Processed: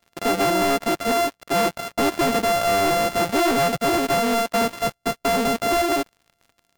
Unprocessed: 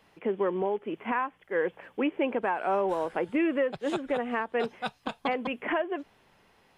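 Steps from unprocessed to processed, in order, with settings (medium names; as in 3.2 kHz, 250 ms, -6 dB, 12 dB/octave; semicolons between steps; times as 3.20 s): sorted samples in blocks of 64 samples; waveshaping leveller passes 5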